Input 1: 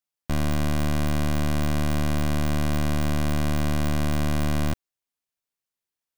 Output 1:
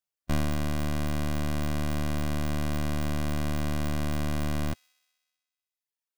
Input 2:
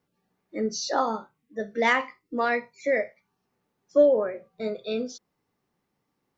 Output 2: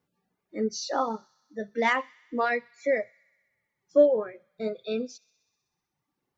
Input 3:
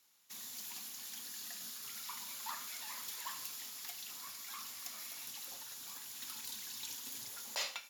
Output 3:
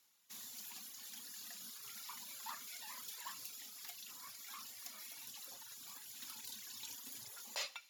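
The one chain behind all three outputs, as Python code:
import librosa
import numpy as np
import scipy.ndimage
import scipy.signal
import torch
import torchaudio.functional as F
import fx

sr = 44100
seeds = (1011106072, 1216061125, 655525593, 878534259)

y = fx.dereverb_blind(x, sr, rt60_s=1.1)
y = fx.hpss(y, sr, part='percussive', gain_db=-4)
y = fx.echo_wet_highpass(y, sr, ms=63, feedback_pct=77, hz=2500.0, wet_db=-23)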